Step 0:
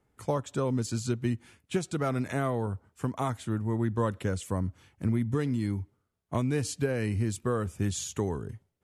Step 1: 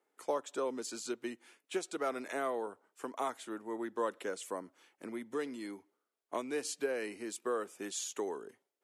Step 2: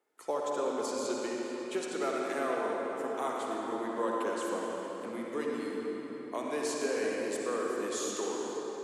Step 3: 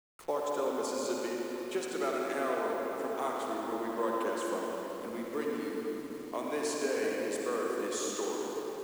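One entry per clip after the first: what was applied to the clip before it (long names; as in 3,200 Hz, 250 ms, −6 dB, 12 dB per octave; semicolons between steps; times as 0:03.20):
high-pass filter 330 Hz 24 dB per octave; level −3.5 dB
convolution reverb RT60 4.4 s, pre-delay 48 ms, DRR −3 dB
hold until the input has moved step −48 dBFS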